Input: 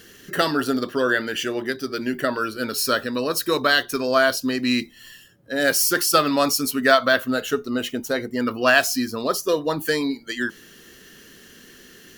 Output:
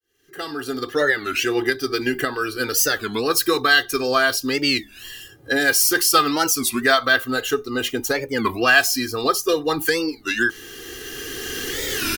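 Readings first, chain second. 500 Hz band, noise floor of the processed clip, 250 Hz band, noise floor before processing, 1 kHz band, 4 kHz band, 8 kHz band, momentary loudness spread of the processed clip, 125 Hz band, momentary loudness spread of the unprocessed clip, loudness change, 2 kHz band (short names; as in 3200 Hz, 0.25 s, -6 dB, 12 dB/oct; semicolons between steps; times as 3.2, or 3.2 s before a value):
0.0 dB, -46 dBFS, -1.0 dB, -48 dBFS, +1.0 dB, +3.0 dB, +4.5 dB, 14 LU, +0.5 dB, 10 LU, +2.0 dB, +3.5 dB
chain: opening faded in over 2.63 s; recorder AGC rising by 11 dB/s; comb 2.5 ms, depth 88%; dynamic EQ 440 Hz, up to -4 dB, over -30 dBFS, Q 0.73; record warp 33 1/3 rpm, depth 250 cents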